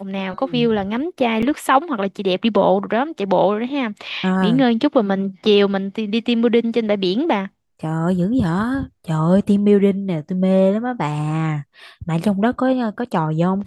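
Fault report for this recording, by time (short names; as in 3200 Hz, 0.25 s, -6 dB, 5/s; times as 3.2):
1.42–1.43 gap 5.9 ms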